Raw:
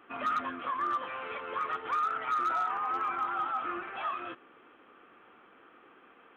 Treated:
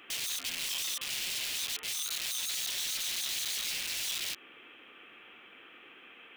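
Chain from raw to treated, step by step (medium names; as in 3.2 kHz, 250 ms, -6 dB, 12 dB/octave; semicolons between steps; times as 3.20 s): compression 12:1, threshold -41 dBFS, peak gain reduction 14.5 dB; dynamic bell 1.2 kHz, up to +3 dB, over -51 dBFS, Q 1.3; integer overflow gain 42 dB; resonant high shelf 1.8 kHz +12 dB, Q 1.5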